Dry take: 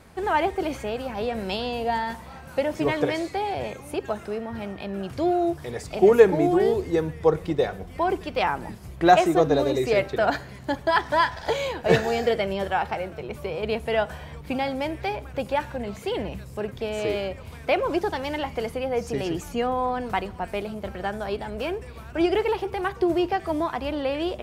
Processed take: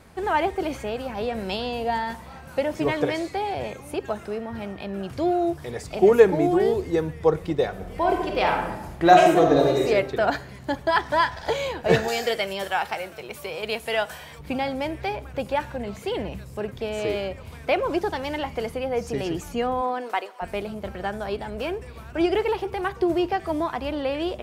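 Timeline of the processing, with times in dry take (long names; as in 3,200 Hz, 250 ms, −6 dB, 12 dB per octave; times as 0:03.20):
0:07.71–0:09.84: thrown reverb, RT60 0.96 s, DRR 1 dB
0:12.08–0:14.39: spectral tilt +3 dB per octave
0:19.81–0:20.41: high-pass filter 200 Hz → 550 Hz 24 dB per octave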